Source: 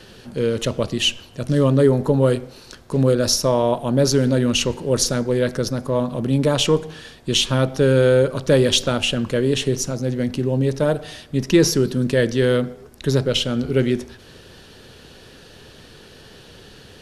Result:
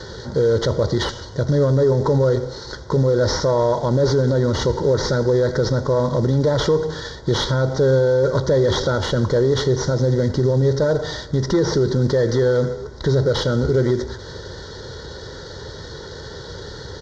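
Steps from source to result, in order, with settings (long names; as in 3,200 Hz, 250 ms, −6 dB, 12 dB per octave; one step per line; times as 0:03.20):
variable-slope delta modulation 32 kbit/s
high-pass filter 51 Hz
low-shelf EQ 65 Hz +7.5 dB
comb filter 2.1 ms, depth 53%
in parallel at −1 dB: downward compressor, threshold −21 dBFS, peak gain reduction 11.5 dB
on the sum: brickwall limiter −12 dBFS, peak gain reduction 10 dB
soft clipping −8 dBFS, distortion −29 dB
Butterworth band-reject 2,600 Hz, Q 1.5
on a send: single-tap delay 83 ms −22 dB
on the sum: level +3.5 dB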